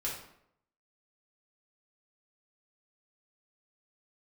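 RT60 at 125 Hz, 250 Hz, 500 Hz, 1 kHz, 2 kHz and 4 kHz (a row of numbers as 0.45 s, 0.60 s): 0.75 s, 0.75 s, 0.75 s, 0.70 s, 0.60 s, 0.50 s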